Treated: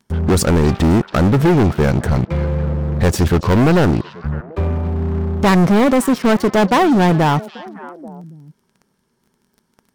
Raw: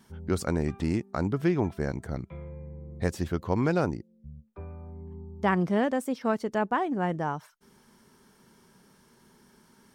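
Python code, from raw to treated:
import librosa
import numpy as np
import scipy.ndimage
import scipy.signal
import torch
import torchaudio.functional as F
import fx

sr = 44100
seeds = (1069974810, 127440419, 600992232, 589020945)

y = fx.low_shelf(x, sr, hz=490.0, db=4.0)
y = fx.leveller(y, sr, passes=5)
y = fx.echo_stepped(y, sr, ms=279, hz=3600.0, octaves=-1.4, feedback_pct=70, wet_db=-11.0)
y = F.gain(torch.from_numpy(y), 1.0).numpy()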